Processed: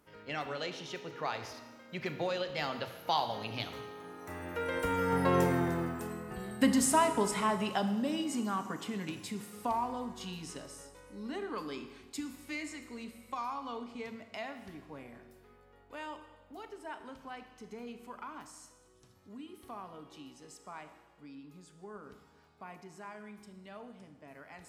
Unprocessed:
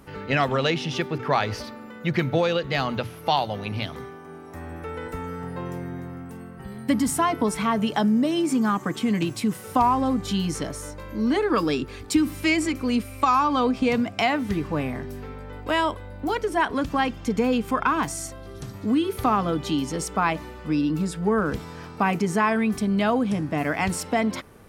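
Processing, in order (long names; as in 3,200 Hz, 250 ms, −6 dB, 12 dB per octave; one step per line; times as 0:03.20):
source passing by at 0:05.47, 20 m/s, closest 7.7 metres
bass and treble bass −7 dB, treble +2 dB
four-comb reverb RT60 1.2 s, combs from 26 ms, DRR 8.5 dB
level +7.5 dB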